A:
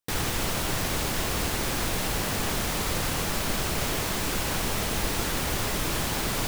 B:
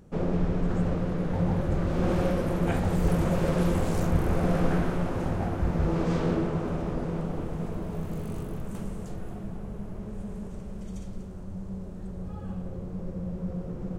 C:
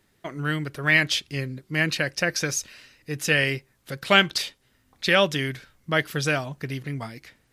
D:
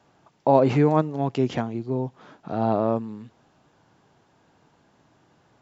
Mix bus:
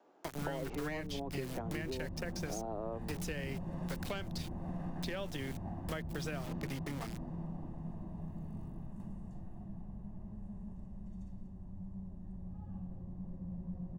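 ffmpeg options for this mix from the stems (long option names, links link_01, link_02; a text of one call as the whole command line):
ffmpeg -i stem1.wav -i stem2.wav -i stem3.wav -i stem4.wav -filter_complex "[0:a]volume=-18.5dB[link_01];[1:a]aecho=1:1:1.1:0.8,adelay=250,volume=-18.5dB[link_02];[2:a]aeval=exprs='clip(val(0),-1,0.178)':channel_layout=same,volume=-2dB[link_03];[3:a]highpass=frequency=300:width=0.5412,highpass=frequency=300:width=1.3066,volume=-6.5dB[link_04];[link_01][link_03]amix=inputs=2:normalize=0,aeval=exprs='val(0)*gte(abs(val(0)),0.0224)':channel_layout=same,acompressor=threshold=-32dB:ratio=2.5,volume=0dB[link_05];[link_02][link_04]amix=inputs=2:normalize=0,tiltshelf=frequency=1100:gain=8,acompressor=threshold=-28dB:ratio=6,volume=0dB[link_06];[link_05][link_06]amix=inputs=2:normalize=0,acrossover=split=160|870[link_07][link_08][link_09];[link_07]acompressor=threshold=-44dB:ratio=4[link_10];[link_08]acompressor=threshold=-40dB:ratio=4[link_11];[link_09]acompressor=threshold=-46dB:ratio=4[link_12];[link_10][link_11][link_12]amix=inputs=3:normalize=0" out.wav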